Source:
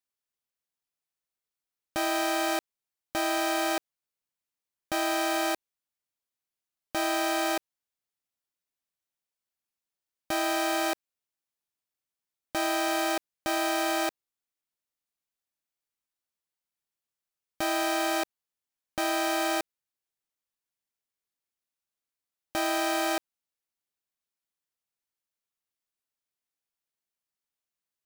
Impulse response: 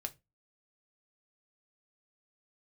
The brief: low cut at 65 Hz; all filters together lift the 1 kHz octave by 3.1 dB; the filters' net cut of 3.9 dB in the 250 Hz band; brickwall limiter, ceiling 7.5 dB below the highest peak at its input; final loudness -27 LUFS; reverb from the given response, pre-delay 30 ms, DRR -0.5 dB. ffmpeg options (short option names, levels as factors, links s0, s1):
-filter_complex "[0:a]highpass=65,equalizer=f=250:t=o:g=-7,equalizer=f=1000:t=o:g=5,alimiter=limit=0.0794:level=0:latency=1,asplit=2[s0][s1];[1:a]atrim=start_sample=2205,adelay=30[s2];[s1][s2]afir=irnorm=-1:irlink=0,volume=1.26[s3];[s0][s3]amix=inputs=2:normalize=0,volume=1.5"